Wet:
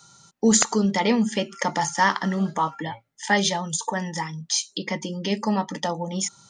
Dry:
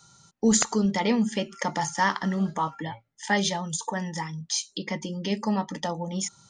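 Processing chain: low shelf 93 Hz -11 dB; gain +4 dB

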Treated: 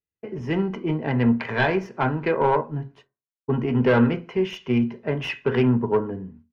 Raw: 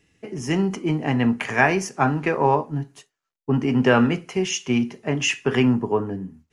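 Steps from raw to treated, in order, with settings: self-modulated delay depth 0.19 ms; expander -44 dBFS; comb 2 ms, depth 34%; hard clip -11.5 dBFS, distortion -18 dB; air absorption 330 m; reverb RT60 0.30 s, pre-delay 4 ms, DRR 12 dB

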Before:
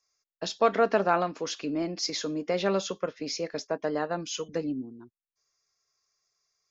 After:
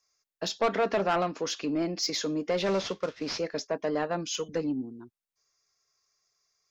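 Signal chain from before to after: 2.62–3.39 CVSD 32 kbps; soft clip -21.5 dBFS, distortion -10 dB; gain +2 dB

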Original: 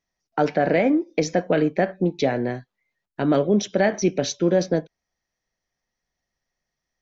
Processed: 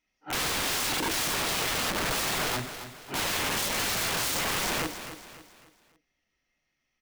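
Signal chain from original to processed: phase scrambler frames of 0.2 s; bell 2700 Hz +13.5 dB 0.59 oct; limiter -15.5 dBFS, peak gain reduction 9 dB; small resonant body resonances 290/1300/2100 Hz, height 8 dB, ringing for 25 ms; wrapped overs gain 23 dB; feedback echo 0.275 s, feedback 40%, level -11 dB; gain -1.5 dB

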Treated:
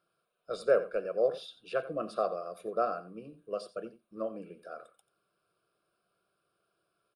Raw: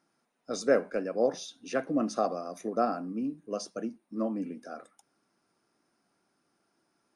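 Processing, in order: fixed phaser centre 1300 Hz, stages 8; echo 88 ms -15.5 dB

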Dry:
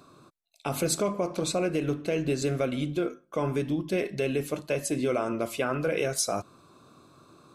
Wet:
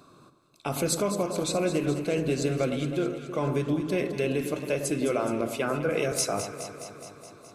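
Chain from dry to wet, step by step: echo with dull and thin repeats by turns 0.105 s, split 1200 Hz, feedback 82%, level -8.5 dB; 5.41–6.12 three-band expander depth 70%

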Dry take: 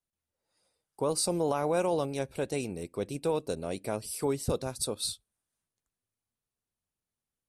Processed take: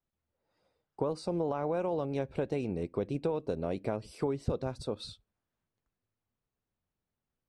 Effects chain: compressor, threshold -33 dBFS, peak gain reduction 9.5 dB; tape spacing loss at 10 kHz 28 dB; gain +6 dB

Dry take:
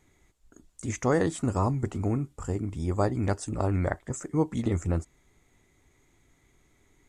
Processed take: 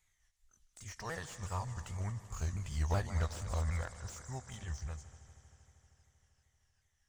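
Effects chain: repeated pitch sweeps -4 st, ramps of 0.377 s; Doppler pass-by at 2.86, 11 m/s, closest 7.8 m; passive tone stack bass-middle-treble 10-0-10; on a send: multi-head echo 78 ms, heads second and third, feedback 71%, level -18 dB; on the sum: slew limiter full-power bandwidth 10 Hz; gain +7.5 dB

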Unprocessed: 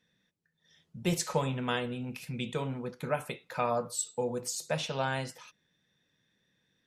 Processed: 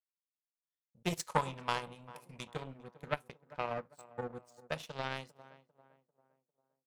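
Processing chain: 3.29–4.72 high shelf 3100 Hz -11.5 dB; power-law curve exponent 2; 1.28–2.52 fifteen-band EQ 250 Hz -3 dB, 1000 Hz +9 dB, 10000 Hz +11 dB; on a send: tape echo 0.397 s, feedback 47%, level -18 dB, low-pass 1200 Hz; on the sum: core saturation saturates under 810 Hz; gain +2.5 dB

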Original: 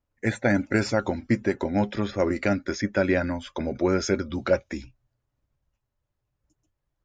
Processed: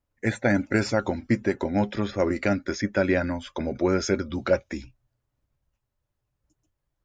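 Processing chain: 1.68–2.54 short-mantissa float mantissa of 8-bit

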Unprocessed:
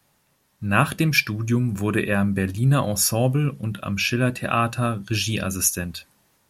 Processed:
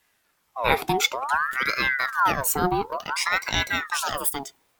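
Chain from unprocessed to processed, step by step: speed glide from 107% -> 164%; ring modulator with a swept carrier 1200 Hz, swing 55%, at 0.56 Hz

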